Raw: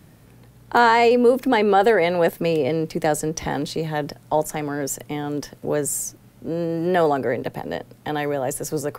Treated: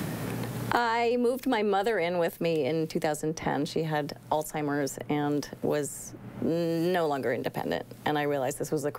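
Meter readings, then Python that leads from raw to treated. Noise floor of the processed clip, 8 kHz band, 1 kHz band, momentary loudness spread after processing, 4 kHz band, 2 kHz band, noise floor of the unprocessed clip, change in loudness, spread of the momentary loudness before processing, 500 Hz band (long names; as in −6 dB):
−48 dBFS, −10.5 dB, −8.5 dB, 7 LU, −6.0 dB, −7.5 dB, −50 dBFS, −7.5 dB, 13 LU, −7.5 dB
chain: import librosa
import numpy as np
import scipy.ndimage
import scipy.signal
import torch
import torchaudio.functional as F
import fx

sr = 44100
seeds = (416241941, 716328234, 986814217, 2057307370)

y = fx.band_squash(x, sr, depth_pct=100)
y = y * librosa.db_to_amplitude(-8.0)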